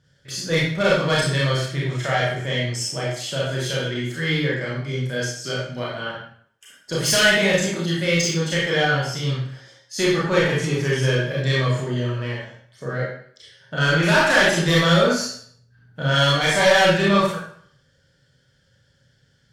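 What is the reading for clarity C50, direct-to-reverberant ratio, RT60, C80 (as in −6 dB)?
0.5 dB, −5.5 dB, 0.60 s, 5.0 dB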